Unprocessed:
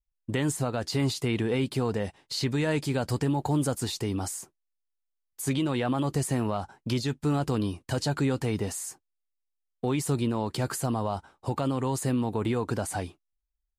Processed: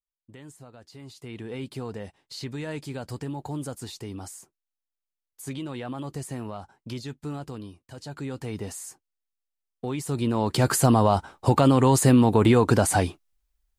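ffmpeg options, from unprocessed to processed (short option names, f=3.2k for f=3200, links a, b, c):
-af "volume=18.5dB,afade=t=in:st=1.05:d=0.62:silence=0.266073,afade=t=out:st=7.21:d=0.68:silence=0.375837,afade=t=in:st=7.89:d=0.83:silence=0.237137,afade=t=in:st=10.08:d=0.77:silence=0.223872"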